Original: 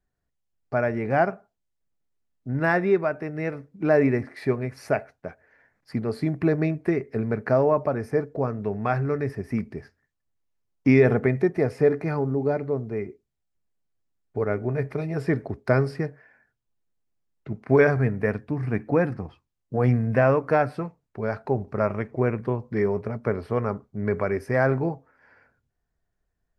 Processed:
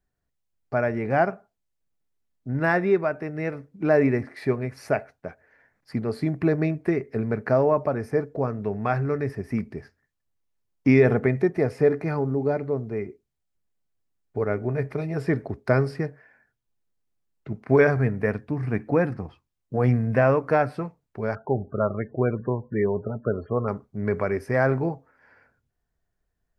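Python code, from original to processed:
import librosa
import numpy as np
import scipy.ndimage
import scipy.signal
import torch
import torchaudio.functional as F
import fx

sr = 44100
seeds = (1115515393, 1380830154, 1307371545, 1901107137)

y = fx.spec_topn(x, sr, count=32, at=(21.35, 23.68))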